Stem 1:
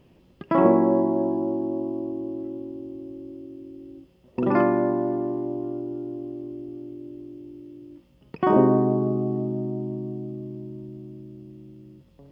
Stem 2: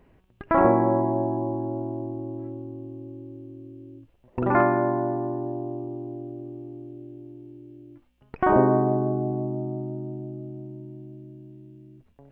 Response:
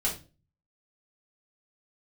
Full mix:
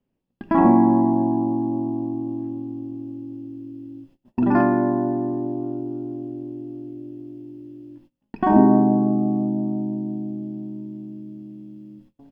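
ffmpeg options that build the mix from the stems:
-filter_complex "[0:a]highpass=100,volume=-4.5dB,asplit=2[link_01][link_02];[link_02]volume=-15dB[link_03];[1:a]equalizer=frequency=220:width_type=o:width=1.7:gain=11,bandreject=frequency=360:width=12,adelay=0.5,volume=-6dB,asplit=2[link_04][link_05];[link_05]volume=-16dB[link_06];[2:a]atrim=start_sample=2205[link_07];[link_03][link_06]amix=inputs=2:normalize=0[link_08];[link_08][link_07]afir=irnorm=-1:irlink=0[link_09];[link_01][link_04][link_09]amix=inputs=3:normalize=0,agate=range=-22dB:threshold=-50dB:ratio=16:detection=peak"

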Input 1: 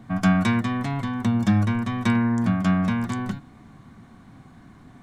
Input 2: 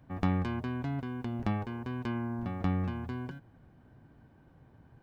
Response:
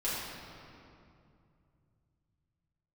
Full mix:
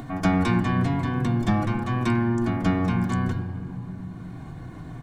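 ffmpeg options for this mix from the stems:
-filter_complex "[0:a]aecho=1:1:2.8:0.91,volume=-5dB[link_01];[1:a]bass=frequency=250:gain=4,treble=frequency=4000:gain=-1,aecho=1:1:6.2:0.46,adelay=19,volume=0.5dB,asplit=2[link_02][link_03];[link_03]volume=-5.5dB[link_04];[2:a]atrim=start_sample=2205[link_05];[link_04][link_05]afir=irnorm=-1:irlink=0[link_06];[link_01][link_02][link_06]amix=inputs=3:normalize=0,acompressor=mode=upward:threshold=-29dB:ratio=2.5"

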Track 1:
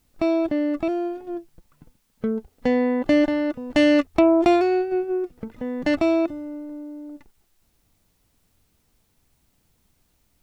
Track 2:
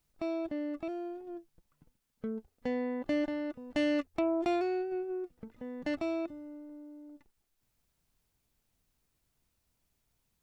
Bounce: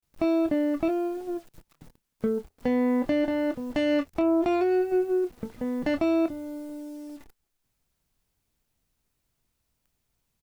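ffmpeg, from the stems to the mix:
ffmpeg -i stem1.wav -i stem2.wav -filter_complex "[0:a]highshelf=frequency=2600:gain=-6,acrusher=bits=8:mix=0:aa=0.000001,volume=-1dB[link_01];[1:a]adelay=25,volume=1dB[link_02];[link_01][link_02]amix=inputs=2:normalize=0,alimiter=limit=-16.5dB:level=0:latency=1:release=303" out.wav

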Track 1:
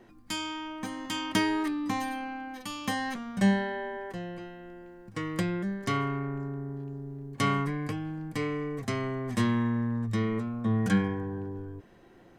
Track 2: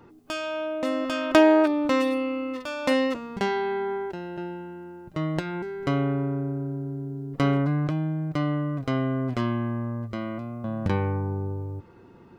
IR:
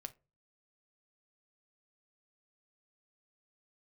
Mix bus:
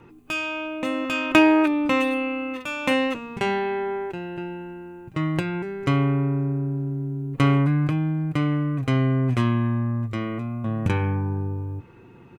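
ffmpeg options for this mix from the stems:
-filter_complex "[0:a]volume=-6dB[link_01];[1:a]equalizer=frequency=125:width_type=o:width=0.33:gain=8,equalizer=frequency=630:width_type=o:width=0.33:gain=-7,equalizer=frequency=2500:width_type=o:width=0.33:gain=10,equalizer=frequency=5000:width_type=o:width=0.33:gain=-12,volume=-1,adelay=0.7,volume=1.5dB[link_02];[link_01][link_02]amix=inputs=2:normalize=0"

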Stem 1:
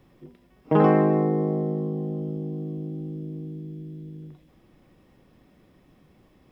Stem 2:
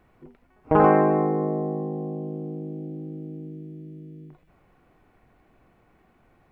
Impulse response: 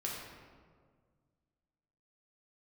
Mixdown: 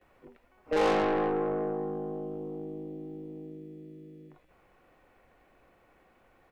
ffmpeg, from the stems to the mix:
-filter_complex "[0:a]asplit=3[link_01][link_02][link_03];[link_01]bandpass=frequency=530:width_type=q:width=8,volume=0dB[link_04];[link_02]bandpass=frequency=1840:width_type=q:width=8,volume=-6dB[link_05];[link_03]bandpass=frequency=2480:width_type=q:width=8,volume=-9dB[link_06];[link_04][link_05][link_06]amix=inputs=3:normalize=0,volume=2dB[link_07];[1:a]equalizer=frequency=140:width_type=o:width=1.7:gain=-5.5,aeval=exprs='(tanh(15.8*val(0)+0.25)-tanh(0.25))/15.8':channel_layout=same,adelay=13,volume=1dB[link_08];[link_07][link_08]amix=inputs=2:normalize=0,lowshelf=frequency=450:gain=-5"

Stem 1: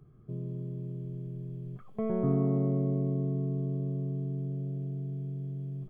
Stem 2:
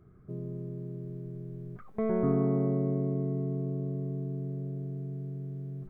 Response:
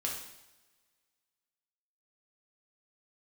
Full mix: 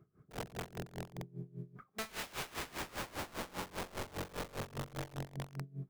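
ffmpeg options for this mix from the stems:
-filter_complex "[0:a]afwtdn=0.0112,volume=-3dB[link_01];[1:a]volume=-3.5dB,asplit=2[link_02][link_03];[link_03]volume=-12.5dB[link_04];[2:a]atrim=start_sample=2205[link_05];[link_04][link_05]afir=irnorm=-1:irlink=0[link_06];[link_01][link_02][link_06]amix=inputs=3:normalize=0,highpass=frequency=190:poles=1,aeval=exprs='(mod(44.7*val(0)+1,2)-1)/44.7':channel_layout=same,aeval=exprs='val(0)*pow(10,-21*(0.5-0.5*cos(2*PI*5*n/s))/20)':channel_layout=same"

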